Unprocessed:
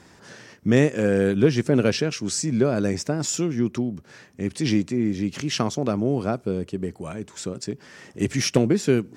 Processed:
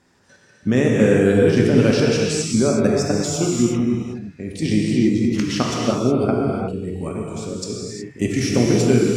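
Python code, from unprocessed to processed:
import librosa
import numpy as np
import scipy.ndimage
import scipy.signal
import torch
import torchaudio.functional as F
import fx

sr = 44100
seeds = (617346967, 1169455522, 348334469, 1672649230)

y = fx.noise_reduce_blind(x, sr, reduce_db=13)
y = fx.level_steps(y, sr, step_db=11)
y = fx.rev_gated(y, sr, seeds[0], gate_ms=390, shape='flat', drr_db=-2.5)
y = y * 10.0 ** (4.5 / 20.0)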